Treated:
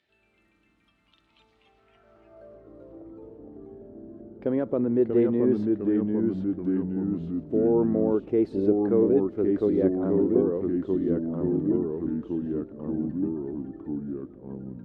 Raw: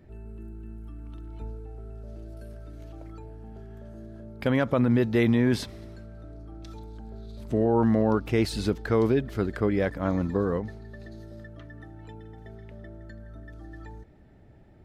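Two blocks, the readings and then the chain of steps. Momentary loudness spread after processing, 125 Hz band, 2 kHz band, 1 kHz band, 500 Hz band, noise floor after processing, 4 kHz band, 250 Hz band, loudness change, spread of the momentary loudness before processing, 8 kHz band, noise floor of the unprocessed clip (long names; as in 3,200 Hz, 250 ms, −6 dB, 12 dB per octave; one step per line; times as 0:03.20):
22 LU, −4.5 dB, below −10 dB, −7.0 dB, +3.5 dB, −67 dBFS, below −15 dB, +3.5 dB, −0.5 dB, 22 LU, below −25 dB, −52 dBFS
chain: band-pass filter sweep 3,500 Hz → 370 Hz, 0:01.63–0:02.70
delay with pitch and tempo change per echo 92 ms, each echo −2 semitones, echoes 3
level +4.5 dB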